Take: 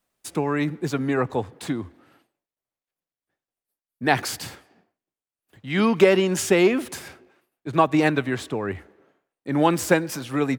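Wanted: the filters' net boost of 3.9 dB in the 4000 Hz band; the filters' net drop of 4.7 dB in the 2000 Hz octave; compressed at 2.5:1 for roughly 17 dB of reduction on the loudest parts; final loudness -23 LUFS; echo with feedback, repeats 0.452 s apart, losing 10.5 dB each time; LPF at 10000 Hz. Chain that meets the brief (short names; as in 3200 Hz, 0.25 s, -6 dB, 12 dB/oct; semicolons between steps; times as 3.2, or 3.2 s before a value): LPF 10000 Hz; bell 2000 Hz -8 dB; bell 4000 Hz +8 dB; compressor 2.5:1, threshold -37 dBFS; feedback echo 0.452 s, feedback 30%, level -10.5 dB; gain +13 dB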